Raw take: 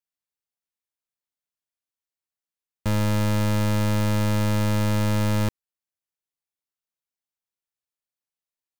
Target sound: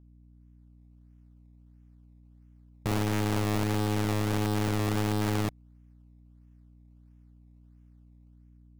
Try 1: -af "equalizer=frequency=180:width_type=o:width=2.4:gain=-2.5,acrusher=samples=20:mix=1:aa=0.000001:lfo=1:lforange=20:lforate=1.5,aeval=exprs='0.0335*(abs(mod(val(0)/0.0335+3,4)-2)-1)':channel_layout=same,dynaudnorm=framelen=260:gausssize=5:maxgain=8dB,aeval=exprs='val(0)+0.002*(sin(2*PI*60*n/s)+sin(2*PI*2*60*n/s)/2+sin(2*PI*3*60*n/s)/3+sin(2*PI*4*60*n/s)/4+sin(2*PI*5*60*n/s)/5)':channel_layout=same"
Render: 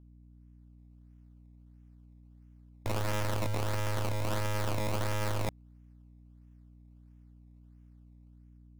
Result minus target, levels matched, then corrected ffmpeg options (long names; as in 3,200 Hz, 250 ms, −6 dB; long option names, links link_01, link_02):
250 Hz band −6.5 dB
-af "equalizer=frequency=180:width_type=o:width=2.4:gain=-11,acrusher=samples=20:mix=1:aa=0.000001:lfo=1:lforange=20:lforate=1.5,aeval=exprs='0.0335*(abs(mod(val(0)/0.0335+3,4)-2)-1)':channel_layout=same,dynaudnorm=framelen=260:gausssize=5:maxgain=8dB,aeval=exprs='val(0)+0.002*(sin(2*PI*60*n/s)+sin(2*PI*2*60*n/s)/2+sin(2*PI*3*60*n/s)/3+sin(2*PI*4*60*n/s)/4+sin(2*PI*5*60*n/s)/5)':channel_layout=same"